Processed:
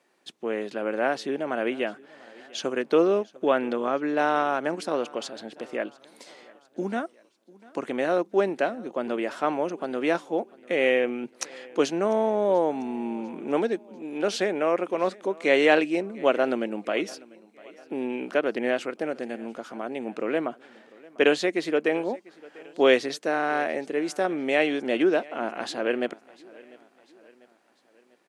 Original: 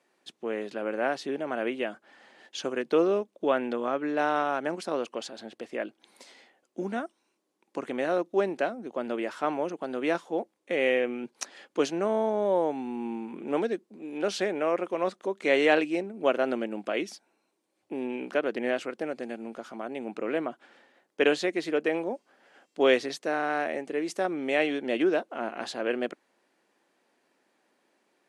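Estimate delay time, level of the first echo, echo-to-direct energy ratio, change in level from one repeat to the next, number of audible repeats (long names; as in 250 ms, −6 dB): 696 ms, −23.0 dB, −22.0 dB, −6.0 dB, 2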